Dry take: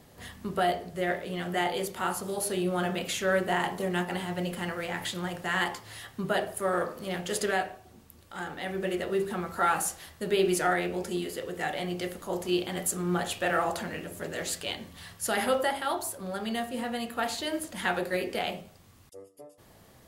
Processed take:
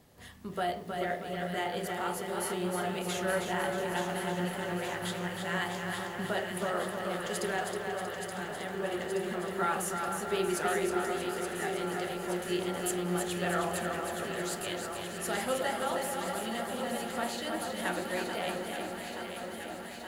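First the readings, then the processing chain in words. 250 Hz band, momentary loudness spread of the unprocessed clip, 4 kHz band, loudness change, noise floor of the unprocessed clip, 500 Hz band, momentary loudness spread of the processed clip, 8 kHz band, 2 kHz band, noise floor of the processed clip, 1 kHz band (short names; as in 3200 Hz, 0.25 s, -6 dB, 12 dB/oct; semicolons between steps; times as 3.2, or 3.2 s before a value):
-2.5 dB, 9 LU, -3.0 dB, -3.0 dB, -56 dBFS, -2.5 dB, 6 LU, -3.0 dB, -3.0 dB, -41 dBFS, -2.5 dB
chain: echo with dull and thin repeats by turns 0.437 s, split 1600 Hz, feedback 86%, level -5.5 dB; lo-fi delay 0.317 s, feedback 55%, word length 9-bit, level -5.5 dB; gain -6 dB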